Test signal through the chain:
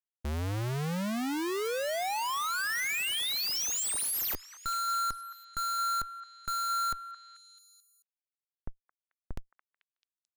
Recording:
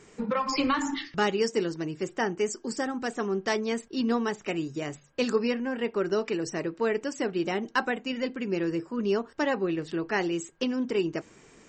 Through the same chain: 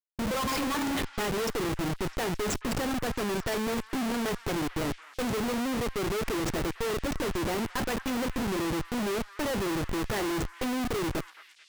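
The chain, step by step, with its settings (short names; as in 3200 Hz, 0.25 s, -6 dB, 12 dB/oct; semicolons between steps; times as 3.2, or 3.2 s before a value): Schmitt trigger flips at -34 dBFS; gate -46 dBFS, range -25 dB; delay with a stepping band-pass 0.219 s, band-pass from 1500 Hz, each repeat 0.7 oct, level -10.5 dB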